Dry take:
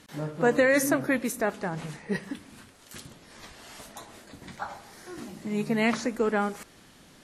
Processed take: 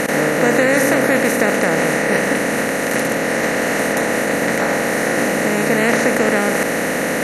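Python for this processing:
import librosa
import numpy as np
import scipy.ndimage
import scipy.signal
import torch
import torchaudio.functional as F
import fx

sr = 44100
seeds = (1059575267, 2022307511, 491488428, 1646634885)

y = fx.bin_compress(x, sr, power=0.2)
y = y * librosa.db_to_amplitude(2.0)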